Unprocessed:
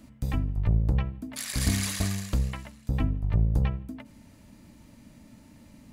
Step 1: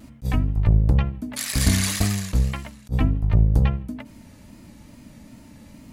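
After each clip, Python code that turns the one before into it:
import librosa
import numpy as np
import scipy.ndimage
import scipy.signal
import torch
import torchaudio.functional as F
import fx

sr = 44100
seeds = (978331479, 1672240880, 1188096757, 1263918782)

y = fx.wow_flutter(x, sr, seeds[0], rate_hz=2.1, depth_cents=69.0)
y = fx.attack_slew(y, sr, db_per_s=490.0)
y = y * 10.0 ** (6.5 / 20.0)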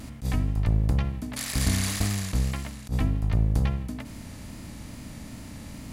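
y = fx.bin_compress(x, sr, power=0.6)
y = y * 10.0 ** (-7.5 / 20.0)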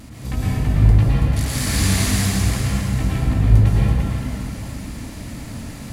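y = fx.rev_plate(x, sr, seeds[1], rt60_s=2.8, hf_ratio=0.75, predelay_ms=95, drr_db=-8.0)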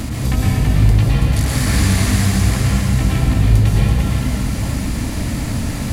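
y = fx.band_squash(x, sr, depth_pct=70)
y = y * 10.0 ** (3.0 / 20.0)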